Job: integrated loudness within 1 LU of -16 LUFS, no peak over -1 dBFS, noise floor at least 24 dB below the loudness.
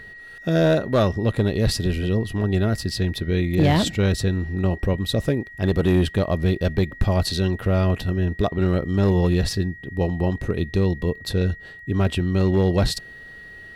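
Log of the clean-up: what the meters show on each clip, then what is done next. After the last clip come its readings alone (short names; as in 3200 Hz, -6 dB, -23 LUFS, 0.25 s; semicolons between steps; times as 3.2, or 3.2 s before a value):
clipped 0.8%; flat tops at -11.0 dBFS; steady tone 1900 Hz; tone level -39 dBFS; loudness -22.0 LUFS; peak -11.0 dBFS; loudness target -16.0 LUFS
-> clip repair -11 dBFS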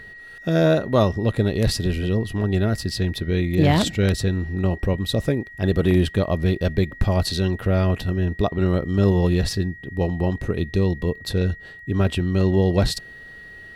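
clipped 0.0%; steady tone 1900 Hz; tone level -39 dBFS
-> notch 1900 Hz, Q 30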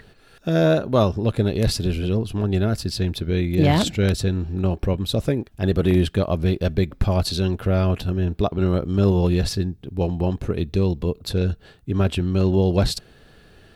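steady tone none; loudness -22.0 LUFS; peak -2.0 dBFS; loudness target -16.0 LUFS
-> gain +6 dB; limiter -1 dBFS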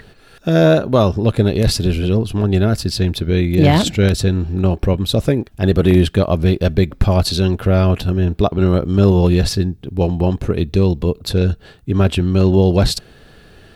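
loudness -16.0 LUFS; peak -1.0 dBFS; noise floor -46 dBFS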